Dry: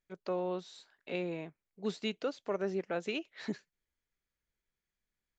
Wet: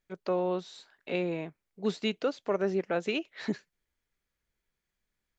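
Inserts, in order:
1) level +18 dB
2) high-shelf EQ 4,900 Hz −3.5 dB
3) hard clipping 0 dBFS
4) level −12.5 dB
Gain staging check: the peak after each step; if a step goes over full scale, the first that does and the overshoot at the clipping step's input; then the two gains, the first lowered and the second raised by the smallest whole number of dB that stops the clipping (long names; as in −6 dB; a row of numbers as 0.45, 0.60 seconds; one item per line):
−3.0, −3.5, −3.5, −16.0 dBFS
no step passes full scale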